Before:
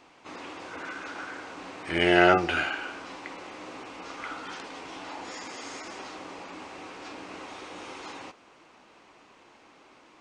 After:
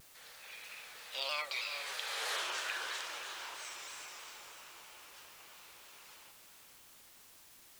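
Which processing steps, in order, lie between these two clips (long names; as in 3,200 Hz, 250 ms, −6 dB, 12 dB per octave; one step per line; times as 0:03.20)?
gliding playback speed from 144% → 118%
source passing by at 0:02.38, 49 m/s, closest 4.1 metres
high-pass filter 430 Hz 24 dB per octave
tilt shelving filter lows −7 dB, about 1,200 Hz
downward compressor 3 to 1, threshold −49 dBFS, peak gain reduction 10 dB
bit-depth reduction 12 bits, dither triangular
feedback delay with all-pass diffusion 499 ms, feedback 42%, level −9 dB
pitch modulation by a square or saw wave saw down 3.1 Hz, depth 100 cents
level +12.5 dB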